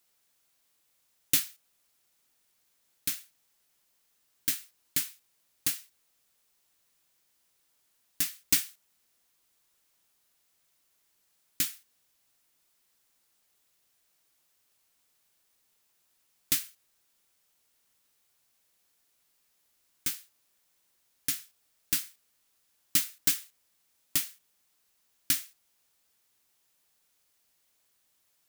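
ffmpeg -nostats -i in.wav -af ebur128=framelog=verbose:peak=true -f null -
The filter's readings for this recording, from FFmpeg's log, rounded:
Integrated loudness:
  I:         -30.4 LUFS
  Threshold: -46.2 LUFS
Loudness range:
  LRA:         8.5 LU
  Threshold: -56.1 LUFS
  LRA low:   -40.1 LUFS
  LRA high:  -31.6 LUFS
True peak:
  Peak:       -7.1 dBFS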